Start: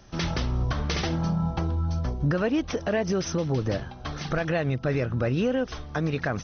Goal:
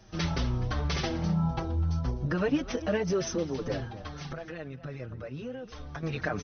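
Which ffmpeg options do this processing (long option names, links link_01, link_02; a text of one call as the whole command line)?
ffmpeg -i in.wav -filter_complex "[0:a]asettb=1/sr,asplit=3[link_01][link_02][link_03];[link_01]atrim=end=3.904[link_04];[link_02]atrim=start=3.9:end=6.03,asetpts=PTS-STARTPTS,afade=type=in:duration=0.004:curve=qsin,afade=type=out:start_time=2.126:duration=0.004:curve=qsin,acompressor=threshold=-34dB:ratio=6[link_05];[link_03]atrim=start=6.026[link_06];[link_04][link_05]acrossfade=duration=0.004:curve1=hsin:curve2=qsin[link_07];[link_07][link_06]acrossfade=duration=0.004:curve1=qsin:curve2=hsin,asplit=2[link_08][link_09];[link_09]adelay=250.7,volume=-16dB,highshelf=frequency=4000:gain=-5.64[link_10];[link_08][link_10]amix=inputs=2:normalize=0,asplit=2[link_11][link_12];[link_12]adelay=5.8,afreqshift=-1.8[link_13];[link_11][link_13]amix=inputs=2:normalize=1" out.wav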